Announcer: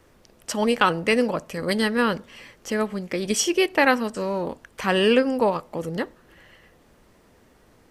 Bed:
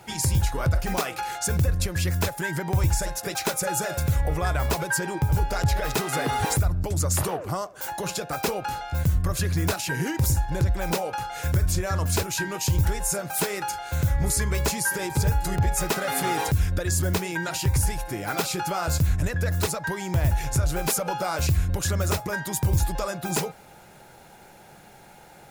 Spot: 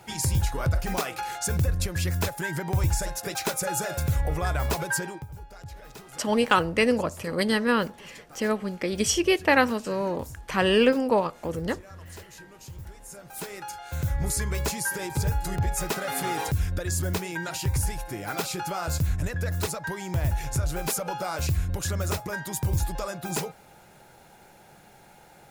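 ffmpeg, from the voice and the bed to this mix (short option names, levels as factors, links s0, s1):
-filter_complex "[0:a]adelay=5700,volume=0.841[s0];[1:a]volume=5.01,afade=t=out:st=4.97:d=0.29:silence=0.133352,afade=t=in:st=13.05:d=1.17:silence=0.158489[s1];[s0][s1]amix=inputs=2:normalize=0"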